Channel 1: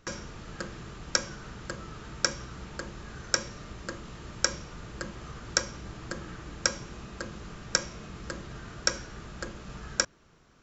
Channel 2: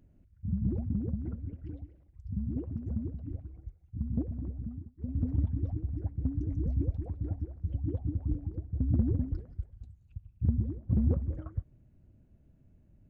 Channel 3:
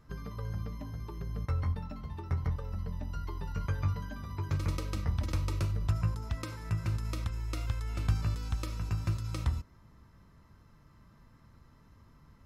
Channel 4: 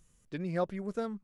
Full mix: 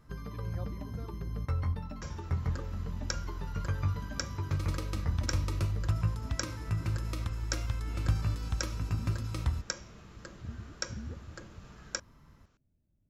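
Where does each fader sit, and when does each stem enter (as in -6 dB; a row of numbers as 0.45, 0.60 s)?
-10.0, -14.5, 0.0, -16.0 dB; 1.95, 0.00, 0.00, 0.00 s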